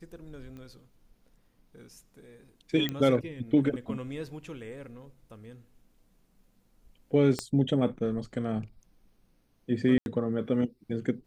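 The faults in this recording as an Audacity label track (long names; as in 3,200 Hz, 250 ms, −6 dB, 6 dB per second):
0.570000	0.570000	click −34 dBFS
2.890000	2.890000	click −17 dBFS
7.390000	7.390000	click −16 dBFS
9.980000	10.060000	drop-out 81 ms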